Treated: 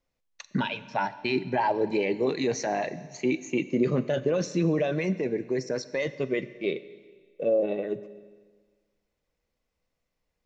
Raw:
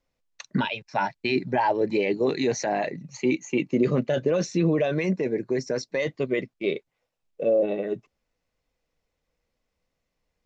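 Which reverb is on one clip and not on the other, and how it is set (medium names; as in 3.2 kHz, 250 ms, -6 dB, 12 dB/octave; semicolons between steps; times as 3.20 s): Schroeder reverb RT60 1.6 s, combs from 30 ms, DRR 14.5 dB; trim -2.5 dB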